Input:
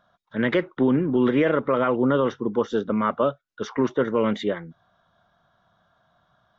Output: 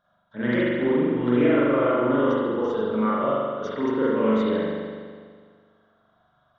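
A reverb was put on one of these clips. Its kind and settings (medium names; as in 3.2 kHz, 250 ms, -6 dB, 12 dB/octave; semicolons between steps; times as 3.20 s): spring tank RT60 1.8 s, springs 41 ms, chirp 35 ms, DRR -8.5 dB; trim -9 dB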